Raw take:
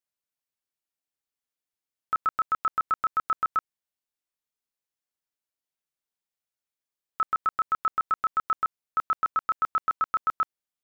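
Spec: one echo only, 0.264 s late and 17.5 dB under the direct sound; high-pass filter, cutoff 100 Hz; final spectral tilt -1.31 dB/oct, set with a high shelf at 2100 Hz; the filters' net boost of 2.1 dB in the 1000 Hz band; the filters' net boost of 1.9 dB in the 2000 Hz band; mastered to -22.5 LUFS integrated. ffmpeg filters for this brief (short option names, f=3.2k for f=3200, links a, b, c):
-af "highpass=100,equalizer=f=1k:t=o:g=3.5,equalizer=f=2k:t=o:g=5,highshelf=f=2.1k:g=-7.5,aecho=1:1:264:0.133,volume=3dB"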